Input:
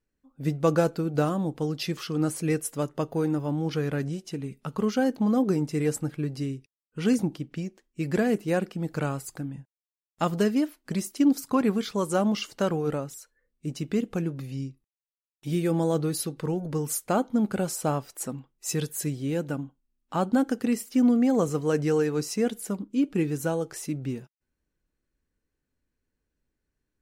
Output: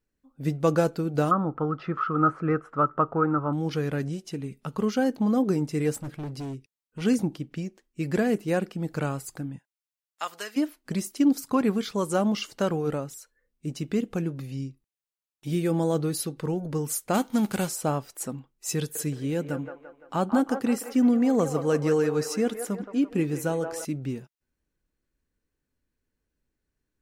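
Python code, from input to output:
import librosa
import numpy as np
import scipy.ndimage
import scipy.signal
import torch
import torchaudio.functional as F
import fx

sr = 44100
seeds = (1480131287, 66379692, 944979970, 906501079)

y = fx.lowpass_res(x, sr, hz=1300.0, q=16.0, at=(1.31, 3.53))
y = fx.overload_stage(y, sr, gain_db=31.5, at=(5.92, 7.02))
y = fx.highpass(y, sr, hz=1100.0, slope=12, at=(9.57, 10.56), fade=0.02)
y = fx.envelope_flatten(y, sr, power=0.6, at=(17.13, 17.67), fade=0.02)
y = fx.echo_wet_bandpass(y, sr, ms=171, feedback_pct=48, hz=970.0, wet_db=-5.0, at=(18.78, 23.85))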